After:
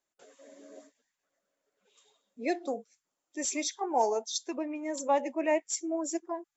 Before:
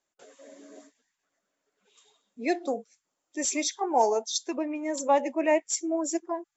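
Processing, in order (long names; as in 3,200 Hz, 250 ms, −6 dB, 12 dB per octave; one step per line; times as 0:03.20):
0:00.57–0:02.50: parametric band 550 Hz +8 dB 0.37 octaves
level −4 dB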